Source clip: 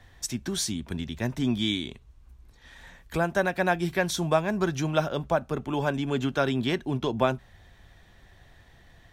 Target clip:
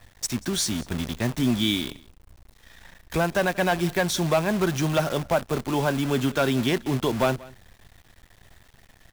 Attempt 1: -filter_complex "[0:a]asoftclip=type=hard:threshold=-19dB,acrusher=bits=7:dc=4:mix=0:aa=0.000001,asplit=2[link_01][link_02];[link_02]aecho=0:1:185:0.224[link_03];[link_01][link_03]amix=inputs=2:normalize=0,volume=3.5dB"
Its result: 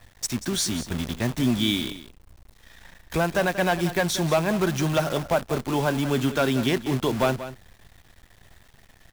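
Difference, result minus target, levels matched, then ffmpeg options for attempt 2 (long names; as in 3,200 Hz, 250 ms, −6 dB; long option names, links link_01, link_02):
echo-to-direct +9 dB
-filter_complex "[0:a]asoftclip=type=hard:threshold=-19dB,acrusher=bits=7:dc=4:mix=0:aa=0.000001,asplit=2[link_01][link_02];[link_02]aecho=0:1:185:0.0794[link_03];[link_01][link_03]amix=inputs=2:normalize=0,volume=3.5dB"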